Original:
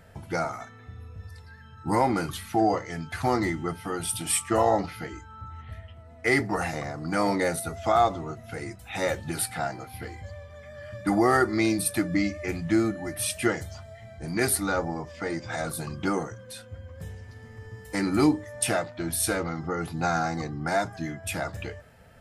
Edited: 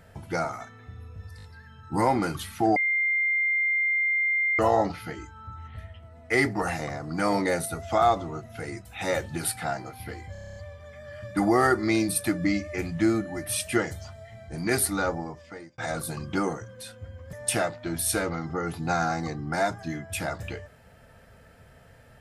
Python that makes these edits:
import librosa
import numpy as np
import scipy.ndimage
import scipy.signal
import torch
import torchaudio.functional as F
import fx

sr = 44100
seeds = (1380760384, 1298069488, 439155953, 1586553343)

y = fx.edit(x, sr, fx.stutter(start_s=1.37, slice_s=0.02, count=4),
    fx.bleep(start_s=2.7, length_s=1.83, hz=2100.0, db=-21.5),
    fx.stutter(start_s=10.26, slice_s=0.03, count=9),
    fx.fade_out_span(start_s=14.76, length_s=0.72),
    fx.cut(start_s=17.03, length_s=1.44), tone=tone)